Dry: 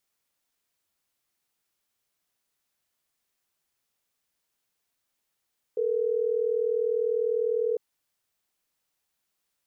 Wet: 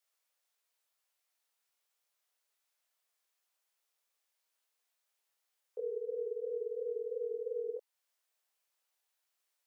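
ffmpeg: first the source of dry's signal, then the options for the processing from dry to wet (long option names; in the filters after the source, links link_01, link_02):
-f lavfi -i "aevalsrc='0.0501*(sin(2*PI*440*t)+sin(2*PI*480*t))*clip(min(mod(t,6),2-mod(t,6))/0.005,0,1)':duration=3.12:sample_rate=44100"
-af "highpass=frequency=460:width=0.5412,highpass=frequency=460:width=1.3066,alimiter=level_in=5dB:limit=-24dB:level=0:latency=1:release=341,volume=-5dB,flanger=delay=18.5:depth=6:speed=2.9"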